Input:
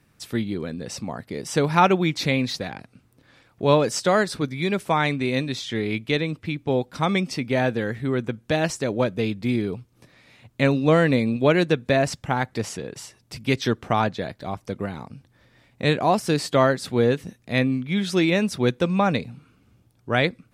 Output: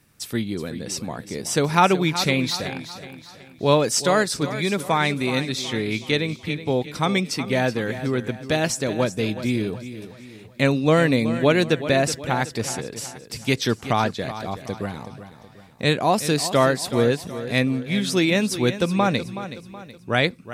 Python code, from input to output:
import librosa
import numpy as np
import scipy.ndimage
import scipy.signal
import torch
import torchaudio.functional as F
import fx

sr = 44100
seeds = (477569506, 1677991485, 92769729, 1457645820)

y = fx.high_shelf(x, sr, hz=4800.0, db=9.5)
y = fx.echo_feedback(y, sr, ms=373, feedback_pct=43, wet_db=-12.5)